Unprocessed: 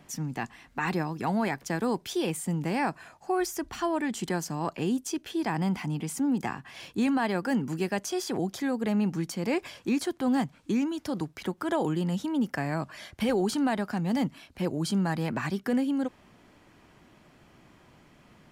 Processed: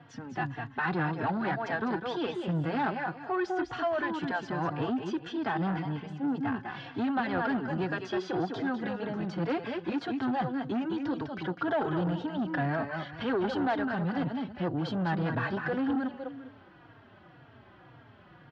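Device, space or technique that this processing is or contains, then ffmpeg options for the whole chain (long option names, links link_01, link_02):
barber-pole flanger into a guitar amplifier: -filter_complex "[0:a]asplit=3[link_01][link_02][link_03];[link_01]afade=type=out:start_time=5.78:duration=0.02[link_04];[link_02]agate=range=-33dB:threshold=-27dB:ratio=3:detection=peak,afade=type=in:start_time=5.78:duration=0.02,afade=type=out:start_time=6.51:duration=0.02[link_05];[link_03]afade=type=in:start_time=6.51:duration=0.02[link_06];[link_04][link_05][link_06]amix=inputs=3:normalize=0,aecho=1:1:202|404|606:0.447|0.112|0.0279,asplit=2[link_07][link_08];[link_08]adelay=3.7,afreqshift=-1.9[link_09];[link_07][link_09]amix=inputs=2:normalize=1,asoftclip=type=tanh:threshold=-28.5dB,highpass=75,equalizer=frequency=110:width_type=q:width=4:gain=8,equalizer=frequency=210:width_type=q:width=4:gain=-5,equalizer=frequency=730:width_type=q:width=4:gain=3,equalizer=frequency=1500:width_type=q:width=4:gain=7,equalizer=frequency=2300:width_type=q:width=4:gain=-7,lowpass=frequency=3600:width=0.5412,lowpass=frequency=3600:width=1.3066,volume=4dB"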